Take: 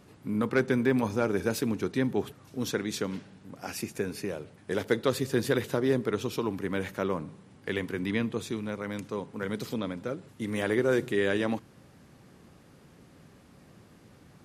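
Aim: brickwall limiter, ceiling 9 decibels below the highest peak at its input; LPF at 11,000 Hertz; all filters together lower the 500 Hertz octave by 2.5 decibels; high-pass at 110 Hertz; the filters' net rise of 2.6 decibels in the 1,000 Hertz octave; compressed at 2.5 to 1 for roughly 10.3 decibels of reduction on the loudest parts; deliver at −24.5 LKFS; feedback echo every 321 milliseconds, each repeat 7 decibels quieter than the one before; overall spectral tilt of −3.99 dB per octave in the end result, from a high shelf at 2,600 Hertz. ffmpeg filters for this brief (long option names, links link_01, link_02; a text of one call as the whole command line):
ffmpeg -i in.wav -af "highpass=110,lowpass=11000,equalizer=frequency=500:width_type=o:gain=-4,equalizer=frequency=1000:width_type=o:gain=3,highshelf=frequency=2600:gain=7.5,acompressor=threshold=-37dB:ratio=2.5,alimiter=level_in=4dB:limit=-24dB:level=0:latency=1,volume=-4dB,aecho=1:1:321|642|963|1284|1605:0.447|0.201|0.0905|0.0407|0.0183,volume=15dB" out.wav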